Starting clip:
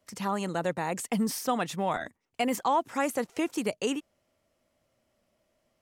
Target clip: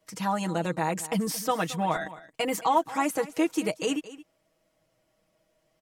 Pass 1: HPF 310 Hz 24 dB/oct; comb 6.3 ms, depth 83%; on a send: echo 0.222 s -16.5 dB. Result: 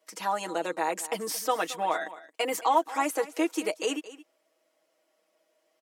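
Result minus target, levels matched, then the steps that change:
250 Hz band -4.0 dB
remove: HPF 310 Hz 24 dB/oct

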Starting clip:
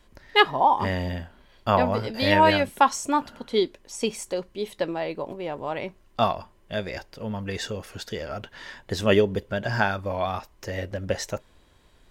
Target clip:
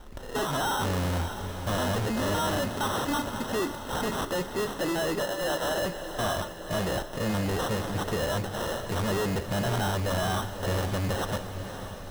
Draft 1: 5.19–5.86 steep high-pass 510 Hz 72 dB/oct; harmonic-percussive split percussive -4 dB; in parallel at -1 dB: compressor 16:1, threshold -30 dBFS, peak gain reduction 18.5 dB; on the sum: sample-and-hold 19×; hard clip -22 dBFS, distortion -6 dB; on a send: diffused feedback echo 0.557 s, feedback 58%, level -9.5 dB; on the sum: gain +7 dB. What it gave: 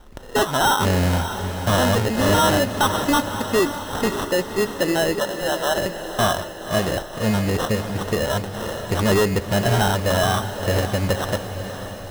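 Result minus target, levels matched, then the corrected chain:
hard clip: distortion -5 dB
5.19–5.86 steep high-pass 510 Hz 72 dB/oct; harmonic-percussive split percussive -4 dB; in parallel at -1 dB: compressor 16:1, threshold -30 dBFS, peak gain reduction 18.5 dB; on the sum: sample-and-hold 19×; hard clip -34 dBFS, distortion -1 dB; on a send: diffused feedback echo 0.557 s, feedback 58%, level -9.5 dB; on the sum: gain +7 dB

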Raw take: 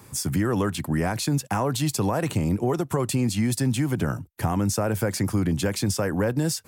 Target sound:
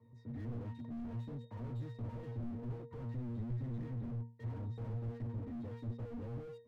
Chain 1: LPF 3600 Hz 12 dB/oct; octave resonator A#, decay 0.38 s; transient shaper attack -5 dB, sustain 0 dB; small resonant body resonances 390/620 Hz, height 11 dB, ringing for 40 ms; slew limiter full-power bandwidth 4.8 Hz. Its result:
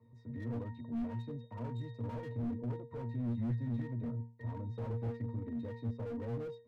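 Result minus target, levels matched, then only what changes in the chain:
slew limiter: distortion -9 dB
change: slew limiter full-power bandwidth 2 Hz

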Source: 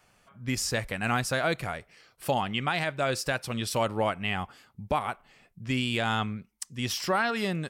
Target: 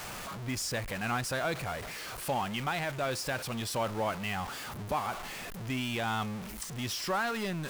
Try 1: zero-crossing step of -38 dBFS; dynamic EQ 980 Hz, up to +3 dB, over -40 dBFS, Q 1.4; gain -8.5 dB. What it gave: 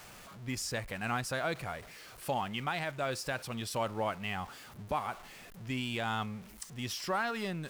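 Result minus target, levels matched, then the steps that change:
zero-crossing step: distortion -8 dB
change: zero-crossing step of -27.5 dBFS

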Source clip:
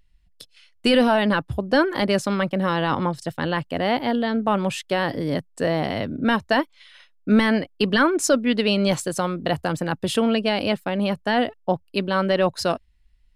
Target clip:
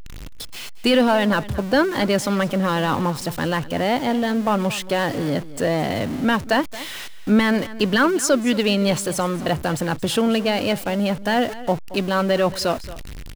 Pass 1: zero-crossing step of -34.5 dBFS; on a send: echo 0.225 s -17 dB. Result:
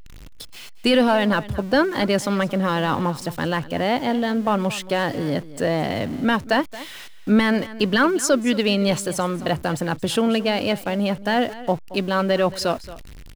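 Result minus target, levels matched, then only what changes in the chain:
zero-crossing step: distortion -6 dB
change: zero-crossing step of -28 dBFS

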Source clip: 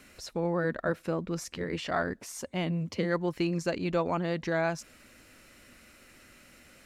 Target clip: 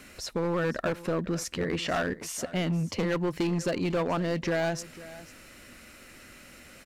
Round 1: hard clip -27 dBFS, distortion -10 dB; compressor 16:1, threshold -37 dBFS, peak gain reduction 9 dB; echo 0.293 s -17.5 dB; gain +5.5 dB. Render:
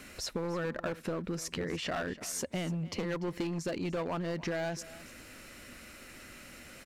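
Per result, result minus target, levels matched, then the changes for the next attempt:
echo 0.205 s early; compressor: peak gain reduction +7 dB
change: echo 0.498 s -17.5 dB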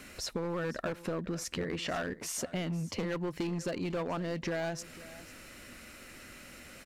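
compressor: peak gain reduction +7 dB
change: compressor 16:1, threshold -29.5 dBFS, peak gain reduction 2.5 dB

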